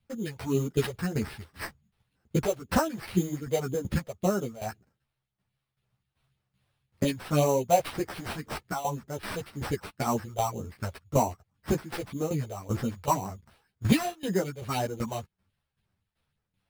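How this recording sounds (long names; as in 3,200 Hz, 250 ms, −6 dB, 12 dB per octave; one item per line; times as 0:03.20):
phaser sweep stages 4, 1.9 Hz, lowest notch 240–3,700 Hz
tremolo saw down 2.6 Hz, depth 80%
aliases and images of a low sample rate 6,800 Hz, jitter 0%
a shimmering, thickened sound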